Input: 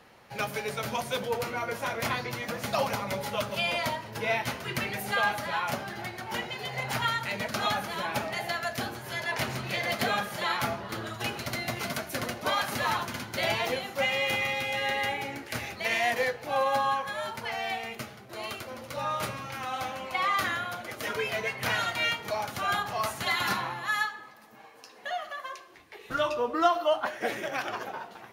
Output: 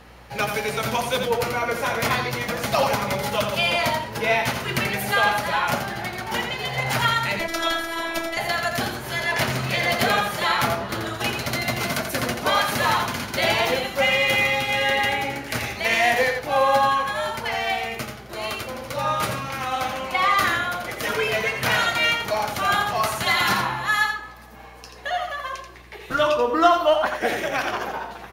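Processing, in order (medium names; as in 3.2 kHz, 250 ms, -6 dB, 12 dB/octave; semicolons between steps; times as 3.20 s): in parallel at -7 dB: one-sided clip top -22.5 dBFS; on the sum: hum 60 Hz, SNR 28 dB; 7.39–8.37 s: robot voice 332 Hz; delay 85 ms -6.5 dB; trim +4 dB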